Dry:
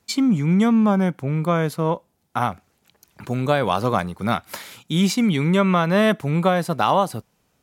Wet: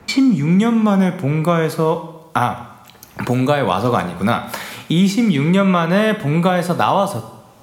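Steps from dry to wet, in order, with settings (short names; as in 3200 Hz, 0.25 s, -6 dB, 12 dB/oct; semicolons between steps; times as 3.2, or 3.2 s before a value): two-slope reverb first 0.67 s, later 1.9 s, from -27 dB, DRR 7.5 dB; three-band squash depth 70%; gain +2.5 dB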